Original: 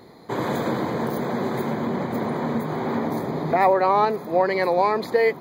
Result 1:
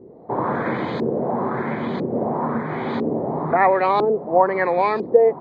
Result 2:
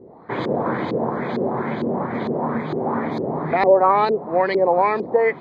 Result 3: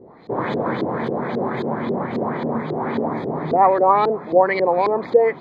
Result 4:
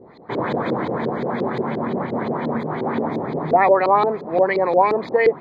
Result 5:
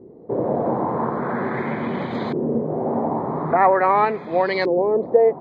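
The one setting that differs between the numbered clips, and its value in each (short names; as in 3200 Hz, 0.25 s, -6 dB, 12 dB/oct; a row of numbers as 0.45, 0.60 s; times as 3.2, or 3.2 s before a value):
LFO low-pass, rate: 1, 2.2, 3.7, 5.7, 0.43 Hz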